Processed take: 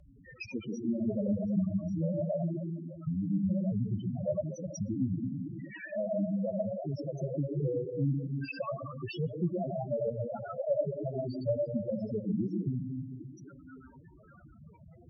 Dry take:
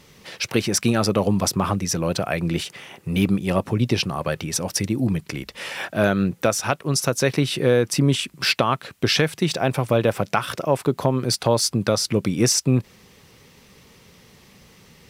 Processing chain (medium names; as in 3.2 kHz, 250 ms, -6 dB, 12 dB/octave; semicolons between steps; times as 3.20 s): partial rectifier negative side -3 dB; added noise pink -44 dBFS; compression 10:1, threshold -21 dBFS, peak gain reduction 9 dB; hard clipper -17 dBFS, distortion -16 dB; high-pass 49 Hz 24 dB/octave; band-passed feedback delay 807 ms, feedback 73%, band-pass 1.7 kHz, level -6.5 dB; algorithmic reverb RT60 1.6 s, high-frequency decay 0.45×, pre-delay 55 ms, DRR 0.5 dB; spectral gate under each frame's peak -15 dB strong; dynamic bell 600 Hz, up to +4 dB, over -40 dBFS, Q 4.4; loudest bins only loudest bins 4; flange 0.18 Hz, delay 2.8 ms, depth 4.9 ms, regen +52%; low-pass that closes with the level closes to 790 Hz, closed at -27 dBFS